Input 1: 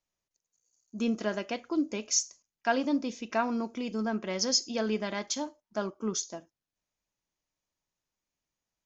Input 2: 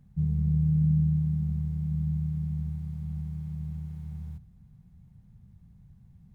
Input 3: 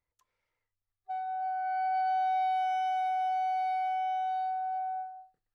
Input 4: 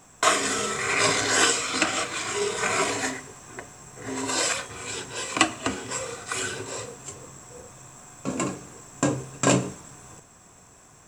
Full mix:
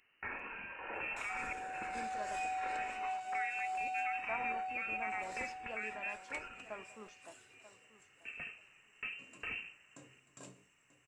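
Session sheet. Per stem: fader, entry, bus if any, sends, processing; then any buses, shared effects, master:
+0.5 dB, 0.00 s, muted 1.53–3.27, bus A, no send, echo send -11.5 dB, three-band isolator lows -14 dB, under 520 Hz, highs -24 dB, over 2100 Hz
off
-11.5 dB, 0.20 s, no bus, no send, echo send -5.5 dB, dry
-18.0 dB, 0.00 s, bus A, no send, echo send -16.5 dB, high shelf 5500 Hz +6.5 dB
bus A: 0.0 dB, inverted band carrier 2900 Hz; limiter -31.5 dBFS, peak gain reduction 15.5 dB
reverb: off
echo: feedback echo 0.937 s, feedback 17%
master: dry

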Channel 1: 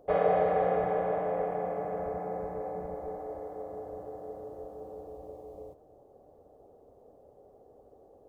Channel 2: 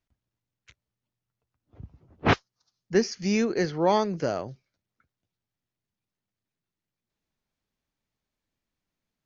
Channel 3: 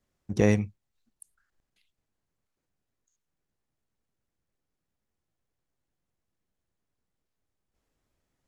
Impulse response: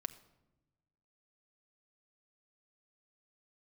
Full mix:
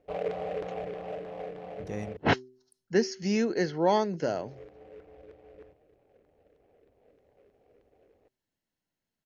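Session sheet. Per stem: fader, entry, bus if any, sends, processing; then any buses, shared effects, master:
-14.0 dB, 0.00 s, muted 2.17–4.37, no send, tilt shelf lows +8.5 dB, about 730 Hz; LFO low-pass saw down 3.2 Hz 380–1900 Hz; noise-modulated delay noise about 1500 Hz, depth 0.042 ms
-1.5 dB, 0.00 s, no send, notch comb 1200 Hz
-15.0 dB, 1.50 s, no send, dry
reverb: off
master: de-hum 127.6 Hz, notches 3

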